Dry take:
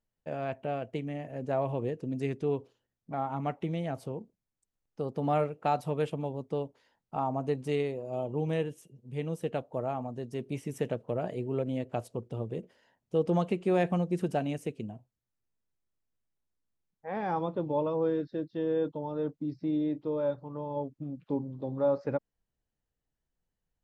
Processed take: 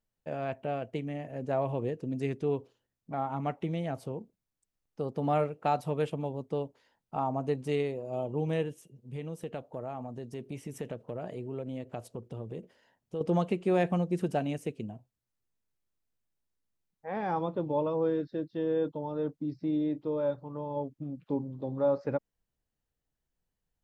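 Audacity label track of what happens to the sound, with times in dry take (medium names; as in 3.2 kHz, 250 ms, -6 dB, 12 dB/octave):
9.160000	13.210000	compression 2:1, threshold -37 dBFS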